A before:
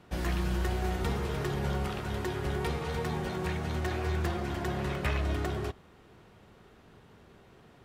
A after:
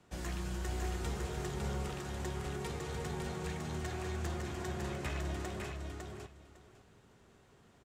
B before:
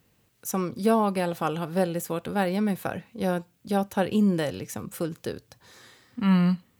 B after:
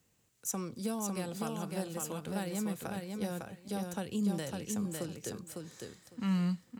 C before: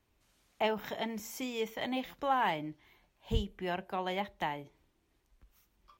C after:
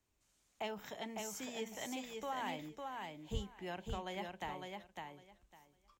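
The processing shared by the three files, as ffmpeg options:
-filter_complex "[0:a]equalizer=frequency=7300:width=1.5:gain=10,acrossover=split=210|3000[link_01][link_02][link_03];[link_02]acompressor=threshold=-29dB:ratio=6[link_04];[link_01][link_04][link_03]amix=inputs=3:normalize=0,aecho=1:1:554|1108|1662:0.631|0.107|0.0182,volume=-8.5dB"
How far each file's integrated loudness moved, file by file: −7.0, −10.0, −8.5 LU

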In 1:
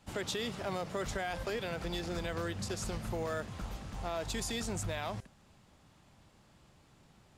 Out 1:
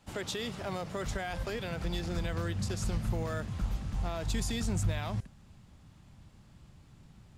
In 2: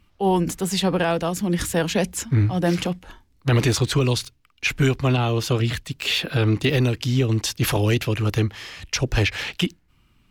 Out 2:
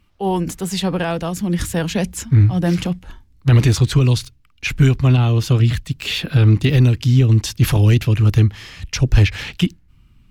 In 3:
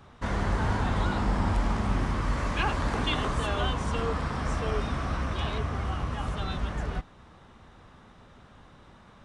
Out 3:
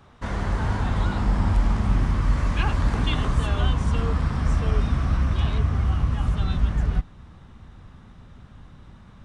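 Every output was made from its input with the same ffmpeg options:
-af "asubboost=boost=3:cutoff=250"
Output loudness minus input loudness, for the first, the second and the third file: +2.5, +5.5, +5.5 LU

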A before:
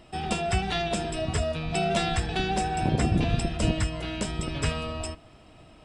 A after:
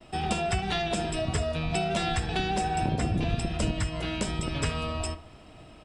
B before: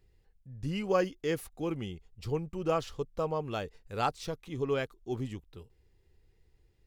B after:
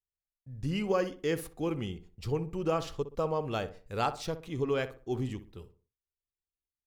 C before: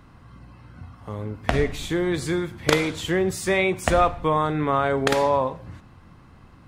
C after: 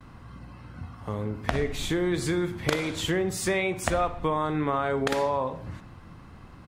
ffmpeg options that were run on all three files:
-filter_complex "[0:a]agate=range=-39dB:threshold=-54dB:ratio=16:detection=peak,acompressor=threshold=-27dB:ratio=3,asplit=2[link_01][link_02];[link_02]adelay=62,lowpass=frequency=1800:poles=1,volume=-12dB,asplit=2[link_03][link_04];[link_04]adelay=62,lowpass=frequency=1800:poles=1,volume=0.36,asplit=2[link_05][link_06];[link_06]adelay=62,lowpass=frequency=1800:poles=1,volume=0.36,asplit=2[link_07][link_08];[link_08]adelay=62,lowpass=frequency=1800:poles=1,volume=0.36[link_09];[link_03][link_05][link_07][link_09]amix=inputs=4:normalize=0[link_10];[link_01][link_10]amix=inputs=2:normalize=0,volume=2dB"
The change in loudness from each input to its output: −1.5, +0.5, −4.5 LU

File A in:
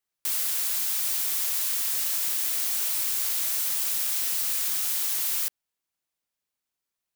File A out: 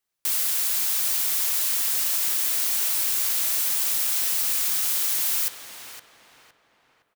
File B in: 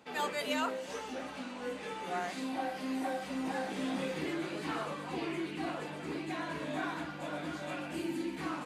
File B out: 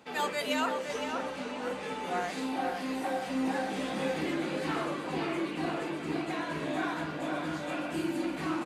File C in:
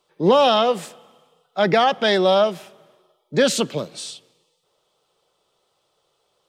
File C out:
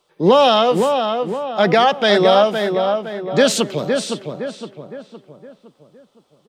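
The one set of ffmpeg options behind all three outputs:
-filter_complex "[0:a]asplit=2[link_01][link_02];[link_02]adelay=513,lowpass=frequency=2300:poles=1,volume=-5dB,asplit=2[link_03][link_04];[link_04]adelay=513,lowpass=frequency=2300:poles=1,volume=0.46,asplit=2[link_05][link_06];[link_06]adelay=513,lowpass=frequency=2300:poles=1,volume=0.46,asplit=2[link_07][link_08];[link_08]adelay=513,lowpass=frequency=2300:poles=1,volume=0.46,asplit=2[link_09][link_10];[link_10]adelay=513,lowpass=frequency=2300:poles=1,volume=0.46,asplit=2[link_11][link_12];[link_12]adelay=513,lowpass=frequency=2300:poles=1,volume=0.46[link_13];[link_01][link_03][link_05][link_07][link_09][link_11][link_13]amix=inputs=7:normalize=0,volume=3dB"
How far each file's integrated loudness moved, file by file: +3.0, +4.0, +2.5 LU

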